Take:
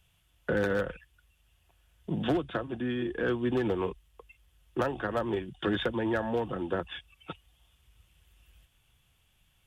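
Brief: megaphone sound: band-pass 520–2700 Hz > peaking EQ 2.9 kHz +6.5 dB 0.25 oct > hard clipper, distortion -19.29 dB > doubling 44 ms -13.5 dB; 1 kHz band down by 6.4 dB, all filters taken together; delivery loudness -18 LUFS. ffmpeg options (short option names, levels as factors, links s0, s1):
-filter_complex "[0:a]highpass=520,lowpass=2700,equalizer=f=1000:t=o:g=-8.5,equalizer=f=2900:t=o:w=0.25:g=6.5,asoftclip=type=hard:threshold=0.0355,asplit=2[s0][s1];[s1]adelay=44,volume=0.211[s2];[s0][s2]amix=inputs=2:normalize=0,volume=11.2"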